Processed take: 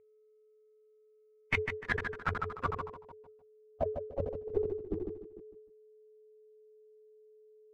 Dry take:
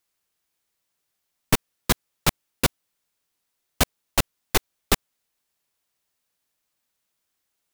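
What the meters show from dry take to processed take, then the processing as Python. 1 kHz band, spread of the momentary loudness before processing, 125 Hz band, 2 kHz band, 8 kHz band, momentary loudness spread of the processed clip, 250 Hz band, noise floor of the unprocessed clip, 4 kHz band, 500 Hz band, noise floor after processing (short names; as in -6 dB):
-8.0 dB, 2 LU, -10.5 dB, -6.0 dB, under -35 dB, 18 LU, -12.0 dB, -78 dBFS, -22.5 dB, -2.0 dB, -65 dBFS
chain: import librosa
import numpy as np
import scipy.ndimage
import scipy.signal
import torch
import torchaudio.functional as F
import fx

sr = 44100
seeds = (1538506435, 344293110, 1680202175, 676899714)

p1 = fx.bin_expand(x, sr, power=1.5)
p2 = np.clip(p1, -10.0 ** (-21.0 / 20.0), 10.0 ** (-21.0 / 20.0))
p3 = p1 + F.gain(torch.from_numpy(p2), -10.5).numpy()
p4 = fx.high_shelf(p3, sr, hz=2500.0, db=10.0)
p5 = p4 + fx.echo_feedback(p4, sr, ms=151, feedback_pct=55, wet_db=-17, dry=0)
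p6 = p5 + 10.0 ** (-50.0 / 20.0) * np.sin(2.0 * np.pi * 430.0 * np.arange(len(p5)) / sr)
p7 = fx.level_steps(p6, sr, step_db=21)
p8 = fx.transient(p7, sr, attack_db=-7, sustain_db=9)
p9 = fx.filter_sweep_lowpass(p8, sr, from_hz=2300.0, to_hz=350.0, start_s=1.43, end_s=4.94, q=7.7)
p10 = fx.peak_eq(p9, sr, hz=91.0, db=8.5, octaves=0.37)
p11 = fx.sustainer(p10, sr, db_per_s=110.0)
y = F.gain(torch.from_numpy(p11), -2.5).numpy()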